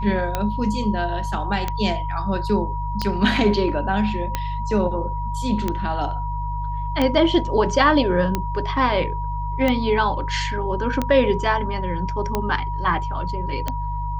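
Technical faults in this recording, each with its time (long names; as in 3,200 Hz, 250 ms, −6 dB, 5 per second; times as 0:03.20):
mains hum 50 Hz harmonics 3 −27 dBFS
scratch tick 45 rpm −8 dBFS
whistle 960 Hz −28 dBFS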